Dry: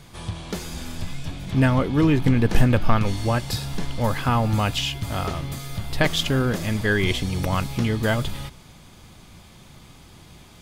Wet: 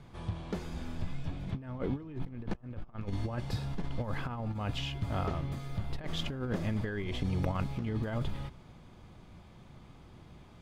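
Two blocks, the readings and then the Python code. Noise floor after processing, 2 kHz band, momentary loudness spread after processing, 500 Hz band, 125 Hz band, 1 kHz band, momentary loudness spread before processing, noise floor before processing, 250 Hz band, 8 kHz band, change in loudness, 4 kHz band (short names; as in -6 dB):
-54 dBFS, -17.5 dB, 21 LU, -14.0 dB, -12.0 dB, -14.5 dB, 14 LU, -48 dBFS, -13.5 dB, -20.5 dB, -13.5 dB, -15.0 dB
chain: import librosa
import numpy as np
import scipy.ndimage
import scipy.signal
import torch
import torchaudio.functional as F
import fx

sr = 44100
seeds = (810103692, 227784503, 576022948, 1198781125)

y = fx.lowpass(x, sr, hz=1300.0, slope=6)
y = fx.over_compress(y, sr, threshold_db=-24.0, ratio=-0.5)
y = fx.dmg_buzz(y, sr, base_hz=120.0, harmonics=11, level_db=-59.0, tilt_db=-4, odd_only=False)
y = y * librosa.db_to_amplitude(-9.0)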